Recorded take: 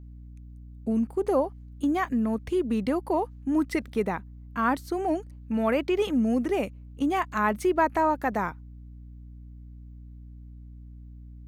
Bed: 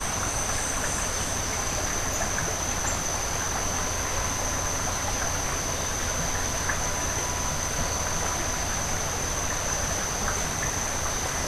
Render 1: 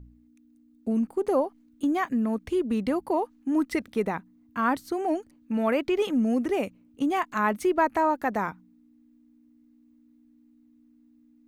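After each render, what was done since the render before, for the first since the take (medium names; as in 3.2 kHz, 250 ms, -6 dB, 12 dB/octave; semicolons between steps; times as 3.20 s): de-hum 60 Hz, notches 3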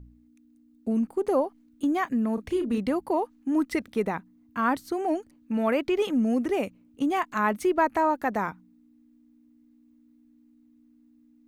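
2.34–2.78 s: doubling 34 ms -7.5 dB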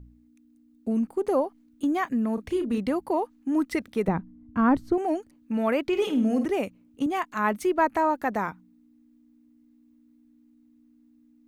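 4.08–4.98 s: tilt EQ -4 dB/octave; 5.85–6.45 s: flutter echo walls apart 8.7 m, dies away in 0.38 s; 7.06–7.94 s: three bands expanded up and down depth 40%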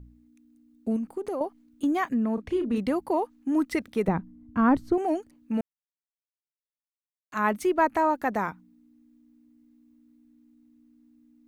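0.96–1.41 s: compression 5:1, threshold -28 dBFS; 2.14–2.76 s: low-pass 3.3 kHz 6 dB/octave; 5.61–7.32 s: mute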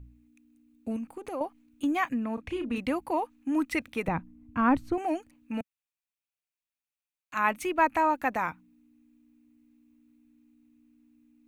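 graphic EQ with 31 bands 200 Hz -10 dB, 400 Hz -11 dB, 630 Hz -3 dB, 2.5 kHz +9 dB, 5 kHz -4 dB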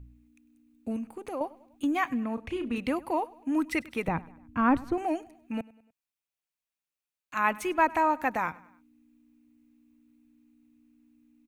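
feedback delay 99 ms, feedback 50%, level -22 dB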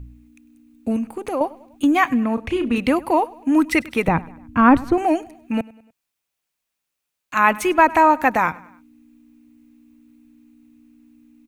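trim +11 dB; peak limiter -2 dBFS, peak gain reduction 2 dB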